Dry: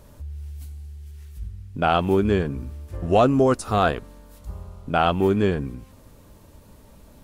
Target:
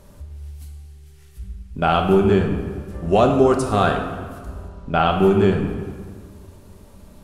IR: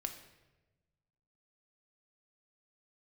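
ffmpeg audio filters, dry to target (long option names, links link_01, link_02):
-filter_complex "[0:a]asettb=1/sr,asplit=3[link_01][link_02][link_03];[link_01]atrim=end=4.684[link_04];[link_02]atrim=start=4.68:end=5.11,asetpts=PTS-STARTPTS,afade=type=in:duration=0.004:curve=qsin,afade=type=out:start_time=0.426:duration=0.004:curve=qsin,lowpass=6000[link_05];[link_03]atrim=start=5.106[link_06];[link_04][link_05]acrossfade=duration=0.004:curve1=hsin:curve2=qsin[link_07];[link_07][link_06]acrossfade=duration=0.004:curve1=qsin:curve2=hsin[link_08];[1:a]atrim=start_sample=2205,asetrate=24696,aresample=44100[link_09];[link_08][link_09]afir=irnorm=-1:irlink=0"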